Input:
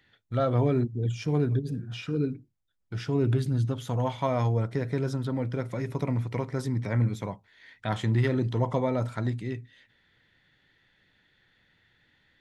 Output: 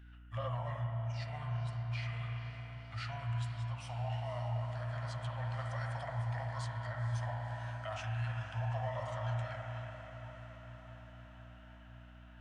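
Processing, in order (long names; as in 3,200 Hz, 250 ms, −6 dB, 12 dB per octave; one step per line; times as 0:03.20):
Chebyshev band-stop filter 120–640 Hz, order 4
low-shelf EQ 240 Hz −7 dB
brickwall limiter −27.5 dBFS, peak gain reduction 8.5 dB
spring reverb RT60 3.5 s, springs 34/56 ms, chirp 40 ms, DRR −1 dB
speech leveller within 4 dB 0.5 s
mains hum 60 Hz, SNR 15 dB
on a send: feedback delay with all-pass diffusion 502 ms, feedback 71%, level −13 dB
on the sum: formants moved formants −3 semitones
level −5.5 dB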